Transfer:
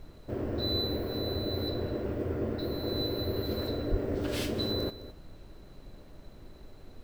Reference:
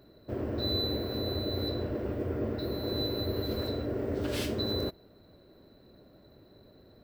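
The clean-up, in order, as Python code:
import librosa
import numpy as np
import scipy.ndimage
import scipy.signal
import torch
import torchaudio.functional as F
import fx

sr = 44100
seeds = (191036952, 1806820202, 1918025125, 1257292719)

y = fx.highpass(x, sr, hz=140.0, slope=24, at=(3.9, 4.02), fade=0.02)
y = fx.noise_reduce(y, sr, print_start_s=5.95, print_end_s=6.45, reduce_db=8.0)
y = fx.fix_echo_inverse(y, sr, delay_ms=211, level_db=-15.0)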